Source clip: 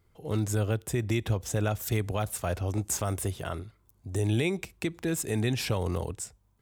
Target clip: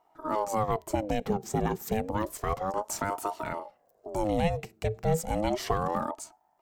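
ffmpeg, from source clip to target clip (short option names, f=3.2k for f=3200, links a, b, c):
-af "equalizer=f=160:t=o:w=0.33:g=12,equalizer=f=500:t=o:w=0.33:g=9,equalizer=f=3.15k:t=o:w=0.33:g=-9,equalizer=f=10k:t=o:w=0.33:g=-9,aeval=exprs='val(0)*sin(2*PI*540*n/s+540*0.5/0.31*sin(2*PI*0.31*n/s))':c=same"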